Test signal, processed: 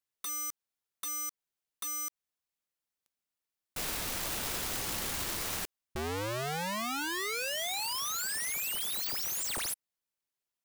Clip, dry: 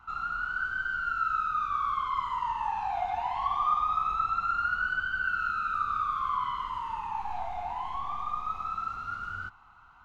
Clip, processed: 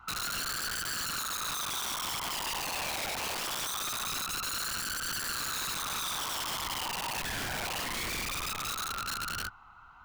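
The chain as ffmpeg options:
ffmpeg -i in.wav -af "acompressor=threshold=-27dB:ratio=20,aeval=exprs='(mod(39.8*val(0)+1,2)-1)/39.8':channel_layout=same,volume=2dB" out.wav

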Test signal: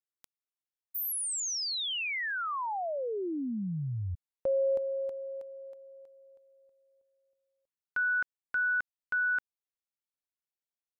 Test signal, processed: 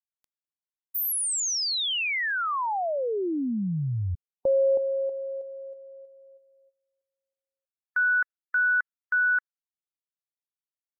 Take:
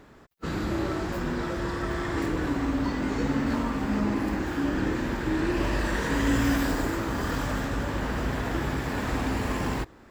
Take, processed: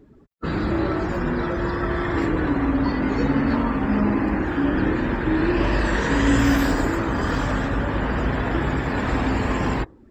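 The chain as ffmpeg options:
ffmpeg -i in.wav -af "afftdn=noise_reduction=20:noise_floor=-45,volume=6dB" out.wav

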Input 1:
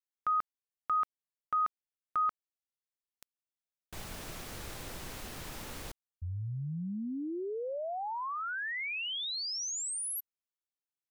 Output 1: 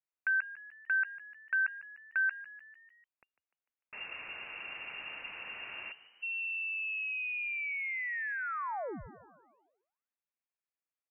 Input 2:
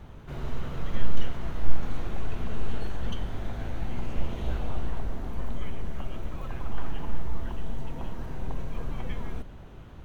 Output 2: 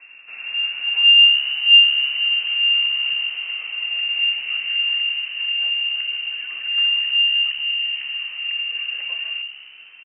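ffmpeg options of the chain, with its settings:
ffmpeg -i in.wav -filter_complex "[0:a]lowpass=frequency=2400:width_type=q:width=0.5098,lowpass=frequency=2400:width_type=q:width=0.6013,lowpass=frequency=2400:width_type=q:width=0.9,lowpass=frequency=2400:width_type=q:width=2.563,afreqshift=-2800,asplit=6[link_01][link_02][link_03][link_04][link_05][link_06];[link_02]adelay=149,afreqshift=68,volume=-16.5dB[link_07];[link_03]adelay=298,afreqshift=136,volume=-21.4dB[link_08];[link_04]adelay=447,afreqshift=204,volume=-26.3dB[link_09];[link_05]adelay=596,afreqshift=272,volume=-31.1dB[link_10];[link_06]adelay=745,afreqshift=340,volume=-36dB[link_11];[link_01][link_07][link_08][link_09][link_10][link_11]amix=inputs=6:normalize=0" out.wav

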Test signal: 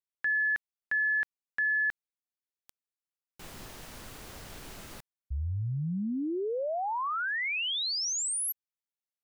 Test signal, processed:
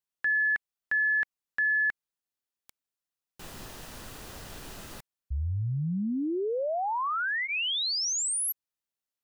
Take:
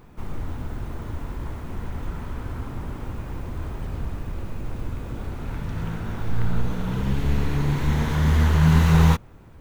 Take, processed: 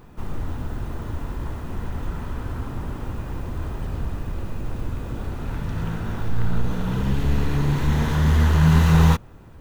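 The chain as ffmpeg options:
ffmpeg -i in.wav -filter_complex "[0:a]bandreject=frequency=2200:width=14,asplit=2[link_01][link_02];[link_02]asoftclip=type=hard:threshold=-21dB,volume=-11dB[link_03];[link_01][link_03]amix=inputs=2:normalize=0" out.wav

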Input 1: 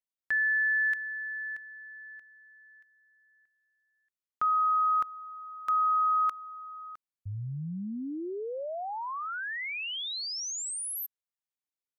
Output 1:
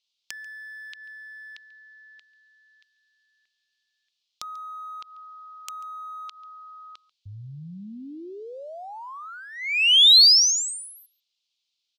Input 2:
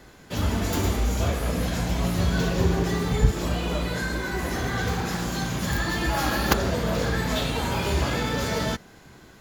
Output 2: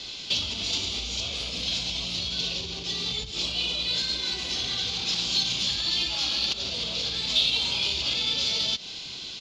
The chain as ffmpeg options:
ffmpeg -i in.wav -af "lowpass=frequency=4100:width=0.5412,lowpass=frequency=4100:width=1.3066,lowshelf=frequency=160:gain=-3.5,acompressor=threshold=-34dB:ratio=20:attack=1.1:release=205:knee=6:detection=peak,volume=29dB,asoftclip=hard,volume=-29dB,aexciter=amount=10.6:drive=9.9:freq=2800,aecho=1:1:140:0.0794" out.wav

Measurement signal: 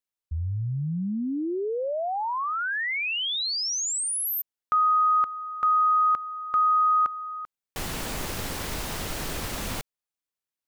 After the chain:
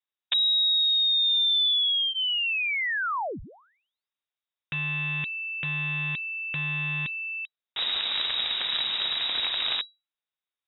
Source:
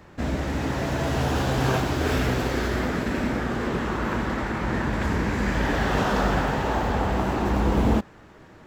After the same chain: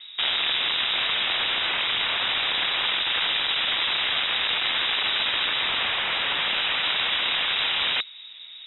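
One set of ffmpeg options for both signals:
ffmpeg -i in.wav -filter_complex "[0:a]highpass=frequency=46:poles=1,lowshelf=frequency=470:gain=10,bandreject=frequency=770:width=12,acrossover=split=640[link_01][link_02];[link_01]acompressor=threshold=-26dB:ratio=4:attack=47:release=24:knee=1:detection=peak[link_03];[link_03][link_02]amix=inputs=2:normalize=0,aeval=exprs='(mod(8.91*val(0)+1,2)-1)/8.91':channel_layout=same,lowpass=frequency=3300:width_type=q:width=0.5098,lowpass=frequency=3300:width_type=q:width=0.6013,lowpass=frequency=3300:width_type=q:width=0.9,lowpass=frequency=3300:width_type=q:width=2.563,afreqshift=-3900" out.wav

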